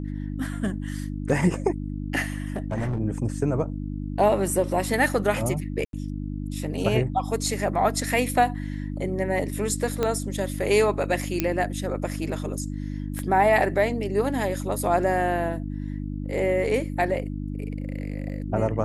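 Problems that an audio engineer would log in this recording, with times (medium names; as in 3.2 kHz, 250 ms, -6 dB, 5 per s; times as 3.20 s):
hum 50 Hz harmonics 6 -31 dBFS
2.46–3.00 s: clipped -23 dBFS
5.85–5.93 s: dropout 82 ms
10.03 s: pop -11 dBFS
11.40 s: pop -7 dBFS
13.19 s: pop -18 dBFS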